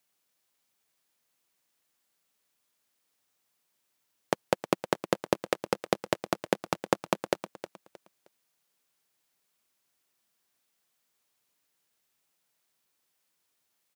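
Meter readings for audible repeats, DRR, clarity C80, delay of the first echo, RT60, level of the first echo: 2, no reverb audible, no reverb audible, 312 ms, no reverb audible, −13.0 dB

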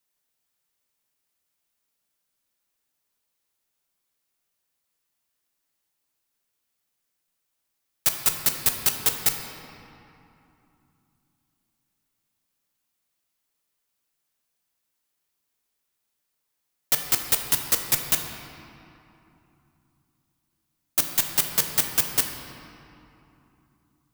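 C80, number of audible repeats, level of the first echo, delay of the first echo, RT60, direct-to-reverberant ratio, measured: 6.0 dB, no echo audible, no echo audible, no echo audible, 2.9 s, 3.5 dB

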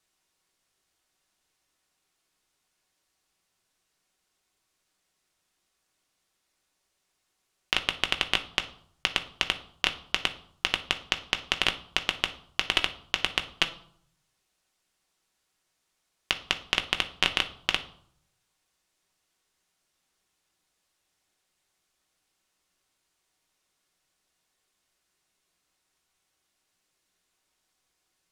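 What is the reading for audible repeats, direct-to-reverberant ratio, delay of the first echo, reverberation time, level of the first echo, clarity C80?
no echo audible, 5.5 dB, no echo audible, 0.60 s, no echo audible, 18.0 dB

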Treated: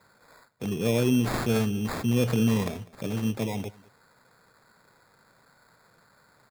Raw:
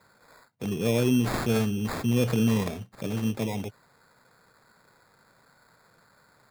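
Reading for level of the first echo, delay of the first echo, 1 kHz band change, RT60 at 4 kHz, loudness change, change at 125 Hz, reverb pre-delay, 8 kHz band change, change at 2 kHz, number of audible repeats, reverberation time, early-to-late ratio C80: −22.5 dB, 199 ms, 0.0 dB, no reverb audible, 0.0 dB, 0.0 dB, no reverb audible, 0.0 dB, 0.0 dB, 1, no reverb audible, no reverb audible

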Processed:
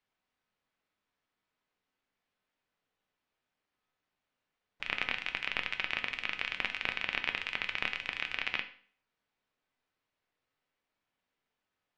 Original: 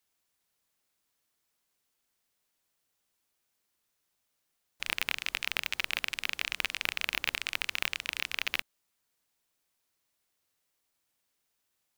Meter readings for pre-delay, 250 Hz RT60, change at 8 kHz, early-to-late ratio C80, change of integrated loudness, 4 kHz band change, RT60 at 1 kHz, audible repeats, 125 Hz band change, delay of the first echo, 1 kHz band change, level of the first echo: 4 ms, 0.50 s, below −15 dB, 16.5 dB, −2.0 dB, −4.0 dB, 0.50 s, no echo audible, 0.0 dB, no echo audible, +0.5 dB, no echo audible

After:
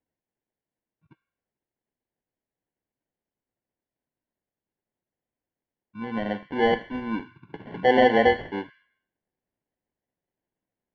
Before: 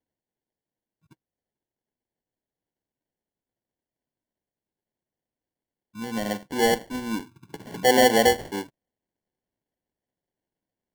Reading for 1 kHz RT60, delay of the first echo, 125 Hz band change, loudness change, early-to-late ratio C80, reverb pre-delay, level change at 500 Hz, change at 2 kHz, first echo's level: 0.70 s, no echo audible, 0.0 dB, −1.0 dB, 17.0 dB, 4 ms, 0.0 dB, 0.0 dB, no echo audible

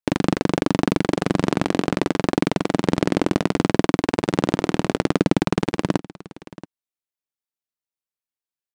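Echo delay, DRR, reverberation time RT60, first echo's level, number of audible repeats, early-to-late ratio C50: 679 ms, no reverb audible, no reverb audible, −18.5 dB, 1, no reverb audible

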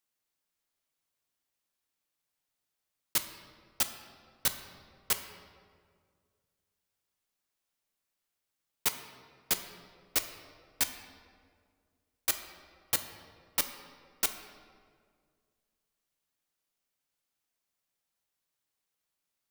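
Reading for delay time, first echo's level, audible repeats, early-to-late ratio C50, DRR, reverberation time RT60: no echo audible, no echo audible, no echo audible, 9.0 dB, 7.0 dB, 2.0 s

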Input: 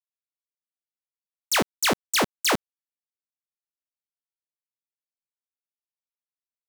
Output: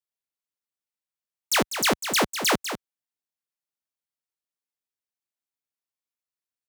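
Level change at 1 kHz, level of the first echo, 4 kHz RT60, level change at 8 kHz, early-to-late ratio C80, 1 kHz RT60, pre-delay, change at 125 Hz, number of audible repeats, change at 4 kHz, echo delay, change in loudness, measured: +0.5 dB, −9.5 dB, no reverb audible, +0.5 dB, no reverb audible, no reverb audible, no reverb audible, +0.5 dB, 1, +0.5 dB, 198 ms, 0.0 dB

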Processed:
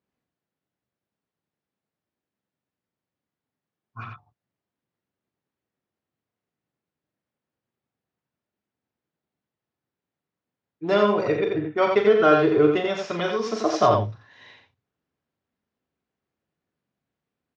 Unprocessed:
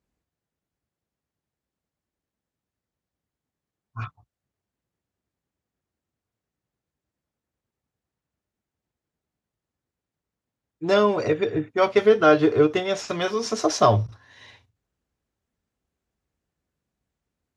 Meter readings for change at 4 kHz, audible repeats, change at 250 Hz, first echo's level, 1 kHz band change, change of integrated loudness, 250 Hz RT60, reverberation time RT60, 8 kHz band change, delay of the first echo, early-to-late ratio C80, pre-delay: −2.5 dB, 2, 0.0 dB, −7.5 dB, +0.5 dB, 0.0 dB, no reverb audible, no reverb audible, can't be measured, 40 ms, no reverb audible, no reverb audible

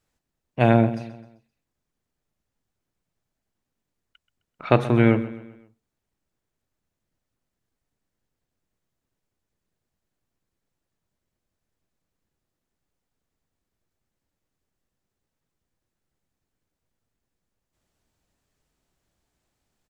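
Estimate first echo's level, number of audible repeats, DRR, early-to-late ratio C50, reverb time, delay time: −16.0 dB, 3, no reverb audible, no reverb audible, no reverb audible, 130 ms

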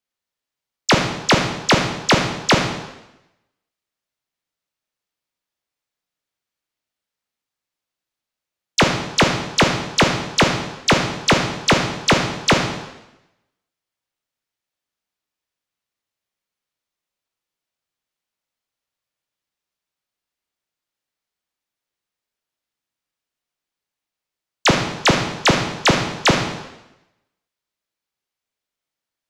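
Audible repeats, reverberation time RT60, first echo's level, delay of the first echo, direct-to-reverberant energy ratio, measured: no echo audible, 0.95 s, no echo audible, no echo audible, 3.0 dB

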